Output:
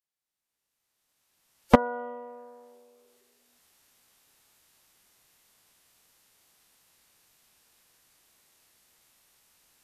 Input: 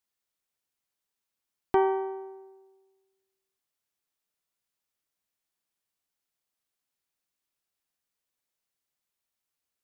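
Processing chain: recorder AGC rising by 17 dB/s; formant-preserving pitch shift -8 st; gain -7.5 dB

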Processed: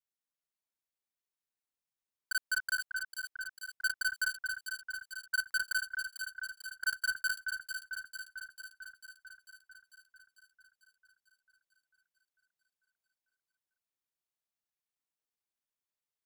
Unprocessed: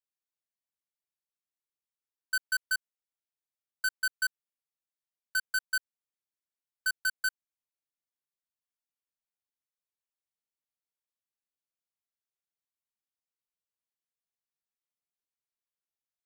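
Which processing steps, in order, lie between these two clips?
local time reversal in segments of 34 ms; echo with dull and thin repeats by turns 0.223 s, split 2200 Hz, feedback 80%, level -4 dB; gain -2.5 dB

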